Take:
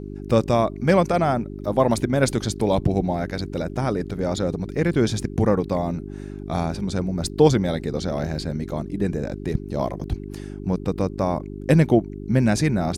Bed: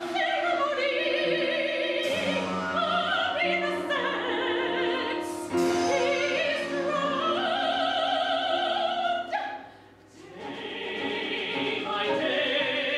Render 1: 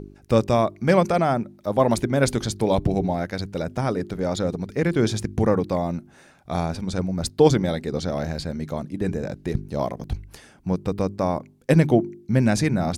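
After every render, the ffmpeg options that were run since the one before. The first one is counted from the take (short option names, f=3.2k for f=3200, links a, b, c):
-af "bandreject=f=50:t=h:w=4,bandreject=f=100:t=h:w=4,bandreject=f=150:t=h:w=4,bandreject=f=200:t=h:w=4,bandreject=f=250:t=h:w=4,bandreject=f=300:t=h:w=4,bandreject=f=350:t=h:w=4,bandreject=f=400:t=h:w=4"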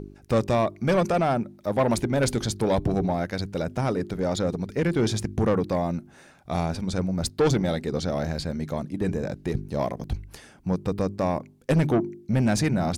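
-af "asoftclip=type=tanh:threshold=-15.5dB"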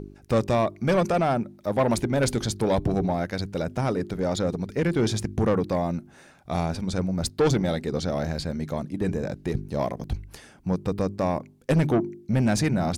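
-af anull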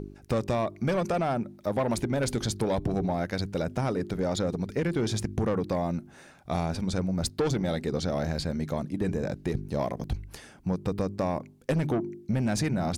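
-af "acompressor=threshold=-24dB:ratio=6"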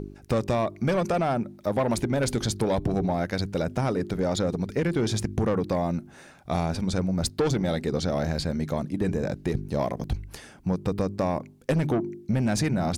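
-af "volume=2.5dB"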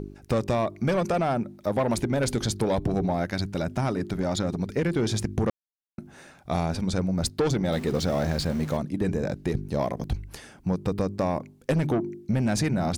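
-filter_complex "[0:a]asettb=1/sr,asplit=3[a][b][c];[a]atrim=end=3.304[d];[b]atrim=start=3.3:end=4.59,asetpts=PTS-STARTPTS,afade=t=in:d=0.004:c=qsin,afade=t=out:st=1.286:d=0.004:c=qsin,equalizer=f=480:w=7.7:g=-13[e];[c]atrim=start=4.586[f];[d][e]acrossfade=d=0.004:c1=hsin:c2=qsin[g];[g][f]acrossfade=d=0.004:c1=qsin:c2=hsin,asettb=1/sr,asplit=3[h][i][j];[h]atrim=end=7.724[k];[i]atrim=start=7.72:end=8.77,asetpts=PTS-STARTPTS,afade=t=in:d=0.004:c=qsin,afade=t=out:st=1.046:d=0.004:c=qsin,aeval=exprs='val(0)+0.5*0.0158*sgn(val(0))':c=same[l];[j]atrim=start=8.766[m];[k][l]acrossfade=d=0.004:c1=hsin:c2=qsin[n];[n][m]acrossfade=d=0.004:c1=qsin:c2=hsin,asplit=3[o][p][q];[o]atrim=end=5.5,asetpts=PTS-STARTPTS,afade=t=out:st=5.496:d=0.004:c=hsin[r];[p]atrim=start=5.5:end=5.98,asetpts=PTS-STARTPTS,volume=0[s];[q]atrim=start=5.98,asetpts=PTS-STARTPTS,afade=t=in:d=0.004:c=hsin[t];[r][s][t]concat=n=3:v=0:a=1"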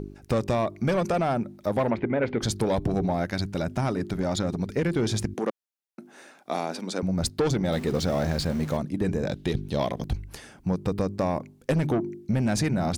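-filter_complex "[0:a]asplit=3[a][b][c];[a]afade=t=out:st=1.89:d=0.02[d];[b]highpass=110,equalizer=f=140:t=q:w=4:g=-5,equalizer=f=460:t=q:w=4:g=4,equalizer=f=2.1k:t=q:w=4:g=5,lowpass=f=2.6k:w=0.5412,lowpass=f=2.6k:w=1.3066,afade=t=in:st=1.89:d=0.02,afade=t=out:st=2.41:d=0.02[e];[c]afade=t=in:st=2.41:d=0.02[f];[d][e][f]amix=inputs=3:normalize=0,asettb=1/sr,asplit=3[g][h][i];[g]atrim=end=5.344[j];[h]atrim=start=5.34:end=7.03,asetpts=PTS-STARTPTS,afade=t=in:d=0.004:c=qsin,afade=t=out:st=1.686:d=0.004:c=qsin,highpass=f=240:w=0.5412,highpass=f=240:w=1.3066[k];[i]atrim=start=7.026[l];[j][k]acrossfade=d=0.004:c1=hsin:c2=qsin[m];[m][l]acrossfade=d=0.004:c1=qsin:c2=hsin,asettb=1/sr,asplit=3[n][o][p];[n]atrim=end=9.274[q];[o]atrim=start=9.27:end=10.02,asetpts=PTS-STARTPTS,afade=t=in:d=0.004:c=qsin,afade=t=out:st=0.746:d=0.004:c=qsin,equalizer=f=3.4k:w=2.3:g=13[r];[p]atrim=start=10.016[s];[q][r]acrossfade=d=0.004:c1=hsin:c2=qsin[t];[t][s]acrossfade=d=0.004:c1=qsin:c2=hsin"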